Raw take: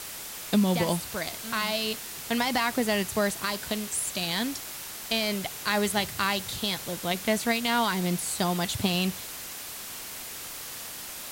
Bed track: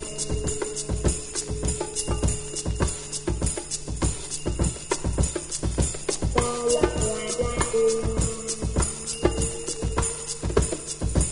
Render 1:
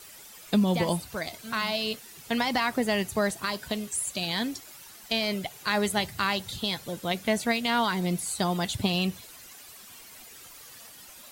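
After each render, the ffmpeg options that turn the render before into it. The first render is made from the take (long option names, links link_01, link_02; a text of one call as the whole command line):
ffmpeg -i in.wav -af "afftdn=noise_reduction=12:noise_floor=-39" out.wav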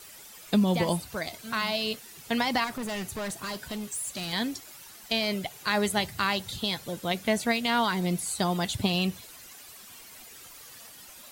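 ffmpeg -i in.wav -filter_complex "[0:a]asettb=1/sr,asplit=3[link_01][link_02][link_03];[link_01]atrim=end=2.644[link_04];[link_02]atrim=start=2.64:end=4.33,asetpts=PTS-STARTPTS,afade=type=in:duration=0.004:curve=qsin,afade=type=out:start_time=1.686:duration=0.004:curve=qsin,volume=31dB,asoftclip=hard,volume=-31dB[link_05];[link_03]atrim=start=4.326[link_06];[link_04][link_05]acrossfade=duration=0.004:curve1=hsin:curve2=qsin[link_07];[link_07][link_06]acrossfade=duration=0.004:curve1=qsin:curve2=hsin" out.wav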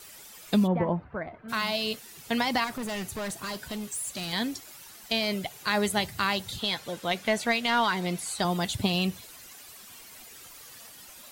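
ffmpeg -i in.wav -filter_complex "[0:a]asplit=3[link_01][link_02][link_03];[link_01]afade=type=out:start_time=0.66:duration=0.02[link_04];[link_02]lowpass=frequency=1700:width=0.5412,lowpass=frequency=1700:width=1.3066,afade=type=in:start_time=0.66:duration=0.02,afade=type=out:start_time=1.48:duration=0.02[link_05];[link_03]afade=type=in:start_time=1.48:duration=0.02[link_06];[link_04][link_05][link_06]amix=inputs=3:normalize=0,asettb=1/sr,asplit=3[link_07][link_08][link_09];[link_07]atrim=end=6.594[link_10];[link_08]atrim=start=6.59:end=8.45,asetpts=PTS-STARTPTS,afade=type=in:duration=0.004:curve=qsin,afade=type=out:start_time=1.856:duration=0.004:curve=qsin,asplit=2[link_11][link_12];[link_12]highpass=frequency=720:poles=1,volume=8dB,asoftclip=type=tanh:threshold=-13dB[link_13];[link_11][link_13]amix=inputs=2:normalize=0,lowpass=frequency=4000:poles=1,volume=-6dB[link_14];[link_09]atrim=start=8.446[link_15];[link_10][link_14]acrossfade=duration=0.004:curve1=hsin:curve2=qsin[link_16];[link_16][link_15]acrossfade=duration=0.004:curve1=qsin:curve2=hsin" out.wav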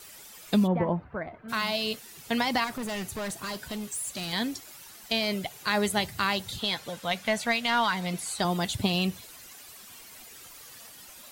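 ffmpeg -i in.wav -filter_complex "[0:a]asettb=1/sr,asplit=3[link_01][link_02][link_03];[link_01]atrim=end=6.894[link_04];[link_02]atrim=start=6.89:end=8.14,asetpts=PTS-STARTPTS,afade=type=in:duration=0.004:curve=qsin,afade=type=out:start_time=1.246:duration=0.004:curve=qsin,equalizer=frequency=360:width=2.5:gain=-9.5[link_05];[link_03]atrim=start=8.136[link_06];[link_04][link_05]acrossfade=duration=0.004:curve1=hsin:curve2=qsin[link_07];[link_07][link_06]acrossfade=duration=0.004:curve1=qsin:curve2=hsin" out.wav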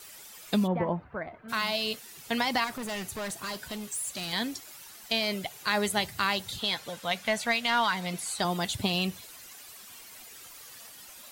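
ffmpeg -i in.wav -af "lowshelf=frequency=430:gain=-4" out.wav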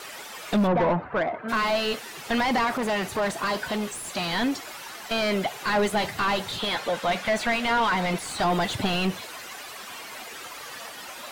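ffmpeg -i in.wav -filter_complex "[0:a]asplit=2[link_01][link_02];[link_02]highpass=frequency=720:poles=1,volume=28dB,asoftclip=type=tanh:threshold=-11dB[link_03];[link_01][link_03]amix=inputs=2:normalize=0,lowpass=frequency=1000:poles=1,volume=-6dB,asoftclip=type=tanh:threshold=-14.5dB" out.wav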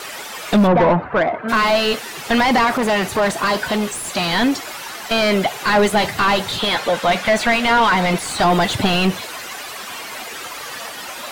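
ffmpeg -i in.wav -af "volume=8.5dB" out.wav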